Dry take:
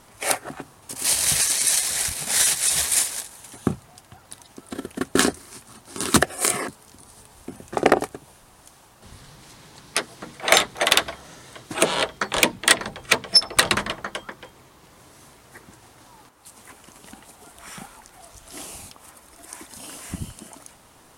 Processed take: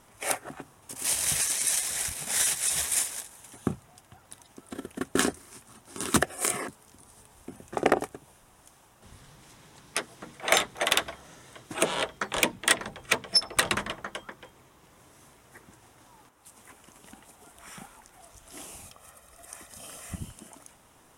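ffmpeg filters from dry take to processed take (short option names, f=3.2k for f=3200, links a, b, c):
-filter_complex "[0:a]asettb=1/sr,asplit=3[a][b][c];[a]atrim=end=18.854[d];[b]atrim=start=18.85:end=20.16,asetpts=PTS-STARTPTS,afade=t=in:d=0.004:c=qsin,afade=t=out:st=1.306:d=0.004:c=qsin,aecho=1:1:1.6:0.56,atrim=end_sample=57771[e];[c]atrim=start=20.156[f];[d][e]acrossfade=d=0.004:c1=hsin:c2=qsin[g];[g][f]acrossfade=d=0.004:c1=qsin:c2=hsin,equalizer=f=4.4k:t=o:w=0.24:g=-7.5,volume=-6dB"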